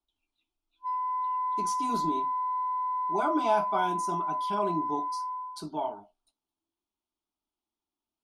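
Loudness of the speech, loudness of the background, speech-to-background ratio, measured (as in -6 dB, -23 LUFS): -33.0 LUFS, -31.0 LUFS, -2.0 dB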